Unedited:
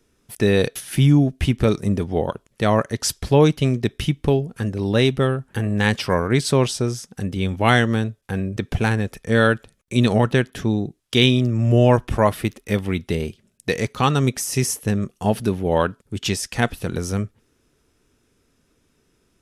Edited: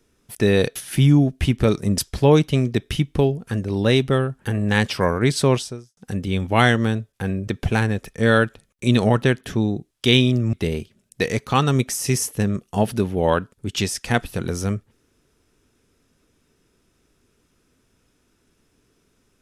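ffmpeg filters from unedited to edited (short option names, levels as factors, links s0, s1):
-filter_complex "[0:a]asplit=4[s0][s1][s2][s3];[s0]atrim=end=1.982[s4];[s1]atrim=start=3.068:end=7.06,asetpts=PTS-STARTPTS,afade=t=out:st=3.562:d=0.43:c=qua[s5];[s2]atrim=start=7.06:end=11.622,asetpts=PTS-STARTPTS,afade=t=in:d=0.004:c=hsin[s6];[s3]atrim=start=13.008[s7];[s5][s6]concat=n=2:v=0:a=1[s8];[s4][s8]acrossfade=d=0.004:c1=hsin:c2=hsin[s9];[s9][s7]acrossfade=d=0.004:c1=hsin:c2=hsin"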